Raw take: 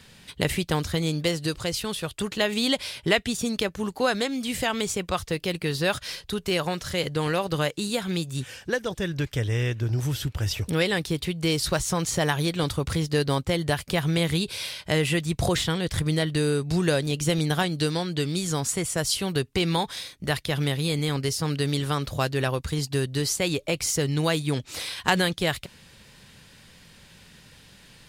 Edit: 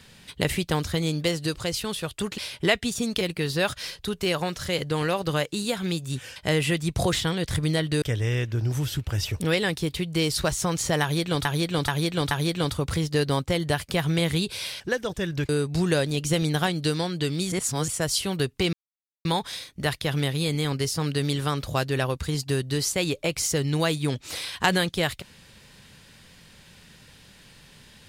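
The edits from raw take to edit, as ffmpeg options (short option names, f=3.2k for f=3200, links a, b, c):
-filter_complex "[0:a]asplit=13[a][b][c][d][e][f][g][h][i][j][k][l][m];[a]atrim=end=2.382[n];[b]atrim=start=2.808:end=3.642[o];[c]atrim=start=5.458:end=8.612[p];[d]atrim=start=14.788:end=16.452[q];[e]atrim=start=9.298:end=12.732[r];[f]atrim=start=12.298:end=12.732[s];[g]atrim=start=12.298:end=12.732[t];[h]atrim=start=12.298:end=14.792[u];[i]atrim=start=8.608:end=9.302[v];[j]atrim=start=16.448:end=18.482[w];[k]atrim=start=18.478:end=18.842,asetpts=PTS-STARTPTS,areverse[x];[l]atrim=start=18.838:end=19.69,asetpts=PTS-STARTPTS,afade=t=out:st=0.848:d=0.004:c=hsin,apad=pad_dur=0.52[y];[m]atrim=start=19.69,asetpts=PTS-STARTPTS,afade=t=in:d=0.004:c=hsin[z];[n][o]acrossfade=d=0.004:c1=hsin:c2=hsin[aa];[aa][p]acrossfade=d=0.004:c1=hsin:c2=hsin[ab];[ab][q]acrossfade=d=0.004:c1=hsin:c2=hsin[ac];[ac][r]acrossfade=d=0.004:c1=hsin:c2=hsin[ad];[ad][s]acrossfade=d=0.004:c1=hsin:c2=hsin[ae];[ae][t]acrossfade=d=0.004:c1=hsin:c2=hsin[af];[af][u]acrossfade=d=0.004:c1=hsin:c2=hsin[ag];[ag][v]acrossfade=d=0.004:c1=hsin:c2=hsin[ah];[ah][w]acrossfade=d=0.004:c1=hsin:c2=hsin[ai];[ai][x]acrossfade=d=0.004:c1=hsin:c2=hsin[aj];[y][z]concat=n=2:v=0:a=1[ak];[aj][ak]acrossfade=d=0.004:c1=hsin:c2=hsin"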